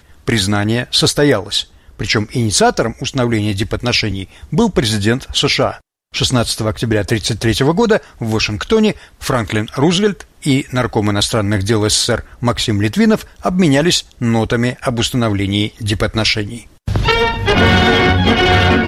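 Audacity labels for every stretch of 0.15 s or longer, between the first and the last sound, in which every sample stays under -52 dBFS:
5.810000	6.120000	silence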